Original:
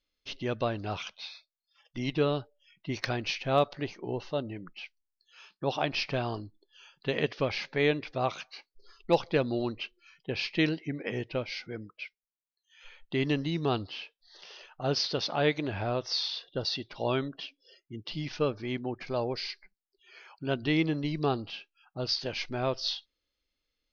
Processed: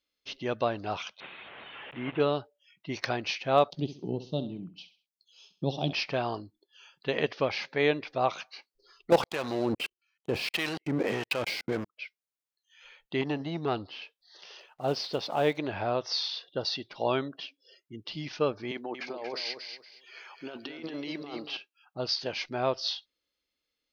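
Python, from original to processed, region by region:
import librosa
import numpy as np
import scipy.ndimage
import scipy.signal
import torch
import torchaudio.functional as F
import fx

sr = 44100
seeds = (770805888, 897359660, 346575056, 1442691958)

y = fx.chain(x, sr, fx.delta_mod(bps=16000, step_db=-36.5),
    fx.low_shelf(hz=75.0, db=-8.5), at=(1.2, 2.2))
y = fx.chain(y, sr, fx.curve_eq(hz=(100.0, 160.0, 470.0, 730.0, 1200.0, 1800.0, 3300.0), db=(0, 12, -4, -8, -18, -27, 2)),
    fx.transient(attack_db=1, sustain_db=-5),
    fx.echo_feedback(ms=66, feedback_pct=35, wet_db=-13.0), at=(3.7, 5.93))
y = fx.chain(y, sr, fx.level_steps(step_db=22),
    fx.leveller(passes=5),
    fx.harmonic_tremolo(hz=1.6, depth_pct=70, crossover_hz=750.0), at=(9.1, 11.97))
y = fx.chain(y, sr, fx.high_shelf(hz=3700.0, db=-7.0),
    fx.transformer_sat(knee_hz=490.0), at=(13.21, 14.02))
y = fx.chain(y, sr, fx.block_float(bits=5),
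    fx.lowpass(hz=2900.0, slope=6),
    fx.peak_eq(hz=1500.0, db=-4.0, octaves=0.93), at=(14.6, 15.58))
y = fx.chain(y, sr, fx.highpass(hz=340.0, slope=12),
    fx.over_compress(threshold_db=-38.0, ratio=-1.0),
    fx.echo_feedback(ms=233, feedback_pct=25, wet_db=-7.5), at=(18.71, 21.57))
y = fx.highpass(y, sr, hz=170.0, slope=6)
y = fx.dynamic_eq(y, sr, hz=820.0, q=0.97, threshold_db=-42.0, ratio=4.0, max_db=4)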